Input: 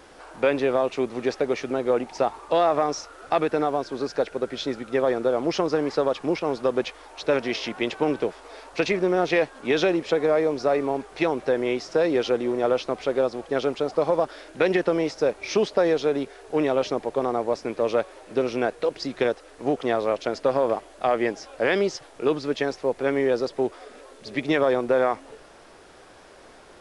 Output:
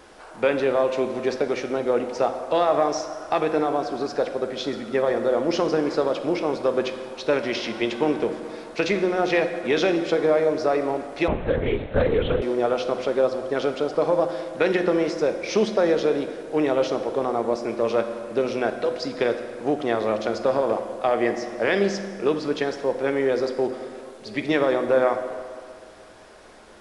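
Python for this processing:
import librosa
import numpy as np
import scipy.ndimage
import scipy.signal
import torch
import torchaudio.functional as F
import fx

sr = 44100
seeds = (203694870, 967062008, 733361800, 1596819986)

y = fx.rev_fdn(x, sr, rt60_s=2.1, lf_ratio=0.95, hf_ratio=0.6, size_ms=28.0, drr_db=6.5)
y = fx.lpc_vocoder(y, sr, seeds[0], excitation='whisper', order=8, at=(11.28, 12.42))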